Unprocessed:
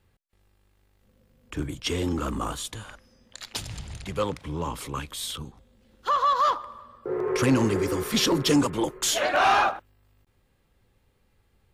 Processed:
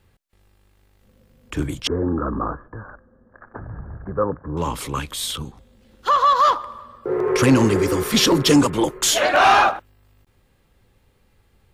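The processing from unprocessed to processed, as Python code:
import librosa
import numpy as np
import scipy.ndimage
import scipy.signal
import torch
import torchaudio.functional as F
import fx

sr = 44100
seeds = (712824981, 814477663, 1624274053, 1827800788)

y = fx.cheby_ripple(x, sr, hz=1700.0, ripple_db=3, at=(1.87, 4.57))
y = y * 10.0 ** (6.5 / 20.0)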